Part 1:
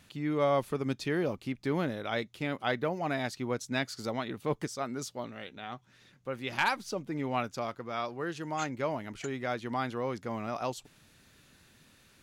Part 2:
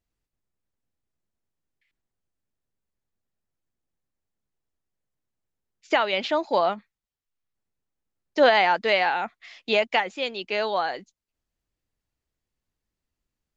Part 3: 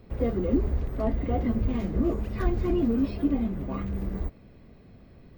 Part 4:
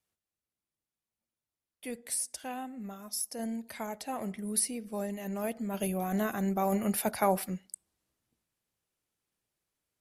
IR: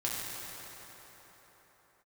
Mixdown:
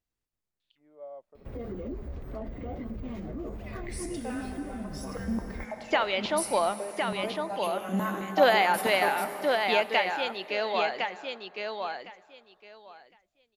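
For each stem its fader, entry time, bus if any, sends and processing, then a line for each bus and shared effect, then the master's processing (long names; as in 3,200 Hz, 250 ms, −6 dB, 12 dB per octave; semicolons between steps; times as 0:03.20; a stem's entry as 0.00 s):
−13.0 dB, 0.60 s, no send, echo send −15.5 dB, envelope filter 610–4,000 Hz, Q 4.7, down, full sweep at −33.5 dBFS
−4.5 dB, 0.00 s, send −20 dB, echo send −4 dB, no processing
0.0 dB, 1.35 s, no send, no echo send, brickwall limiter −24 dBFS, peak gain reduction 11 dB; flanger 1.9 Hz, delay 3.8 ms, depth 7.6 ms, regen −57%
−8.0 dB, 1.80 s, send −3.5 dB, no echo send, low-pass that shuts in the quiet parts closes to 1,700 Hz, open at −26 dBFS; hard clipping −18 dBFS, distortion −26 dB; high-pass on a step sequencer 9.2 Hz 220–3,000 Hz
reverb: on, pre-delay 4 ms
echo: repeating echo 1,059 ms, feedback 16%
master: low-shelf EQ 220 Hz −3 dB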